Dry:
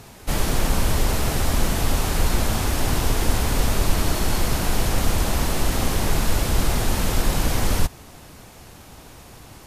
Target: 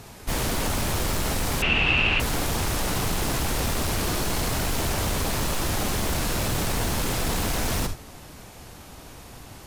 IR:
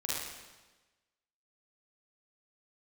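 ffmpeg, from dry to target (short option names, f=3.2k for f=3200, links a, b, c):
-filter_complex "[0:a]asplit=2[a][b];[1:a]atrim=start_sample=2205,atrim=end_sample=4410[c];[b][c]afir=irnorm=-1:irlink=0,volume=-8dB[d];[a][d]amix=inputs=2:normalize=0,aeval=exprs='0.133*(abs(mod(val(0)/0.133+3,4)-2)-1)':c=same,asettb=1/sr,asplit=3[e][f][g];[e]atrim=end=1.624[h];[f]atrim=start=1.62:end=2.2,asetpts=PTS-STARTPTS,afade=t=in:d=0.004:c=qsin,afade=t=out:st=0.576:d=0.004:c=qsin,lowpass=f=2.7k:t=q:w=15[i];[g]atrim=start=2.196[j];[h][i]acrossfade=d=0.004:c1=hsin:c2=qsin[k];[k][j]acrossfade=d=0.004:c1=qsin:c2=hsin,volume=-2.5dB"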